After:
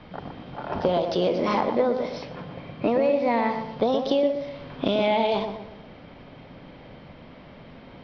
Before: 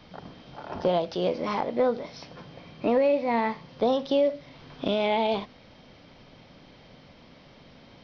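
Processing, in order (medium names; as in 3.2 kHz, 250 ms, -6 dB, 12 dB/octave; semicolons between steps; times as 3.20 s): level-controlled noise filter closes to 2.4 kHz, open at -21 dBFS; compression, threshold -25 dBFS, peak gain reduction 7 dB; filtered feedback delay 120 ms, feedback 45%, low-pass 1.3 kHz, level -5.5 dB; trim +6 dB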